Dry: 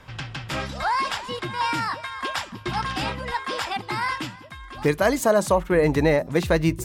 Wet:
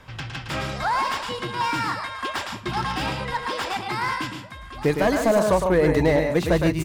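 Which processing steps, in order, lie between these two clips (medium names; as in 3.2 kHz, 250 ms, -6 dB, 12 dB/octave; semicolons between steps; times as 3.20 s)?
loudspeakers at several distances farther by 38 m -7 dB, 51 m -10 dB; slew-rate limiter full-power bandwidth 150 Hz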